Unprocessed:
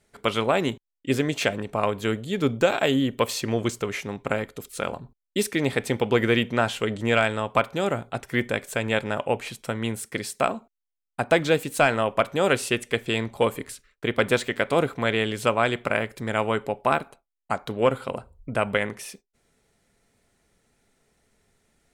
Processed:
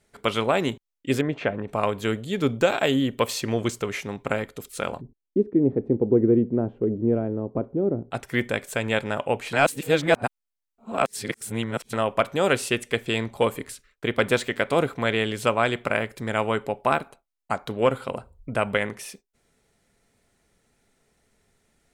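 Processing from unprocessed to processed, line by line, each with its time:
1.21–1.68 s: low-pass 1.7 kHz
5.01–8.11 s: resonant low-pass 350 Hz, resonance Q 2.2
9.53–11.93 s: reverse

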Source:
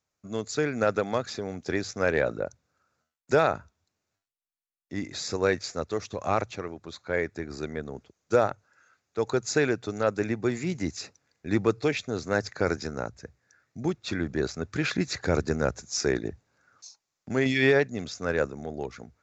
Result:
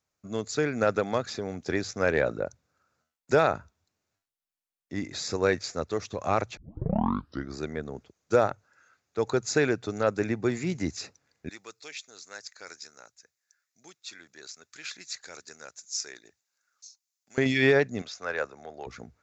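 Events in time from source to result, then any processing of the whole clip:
6.57 s: tape start 0.99 s
11.49–17.38 s: differentiator
18.02–18.87 s: three-band isolator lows -17 dB, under 540 Hz, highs -12 dB, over 6.5 kHz

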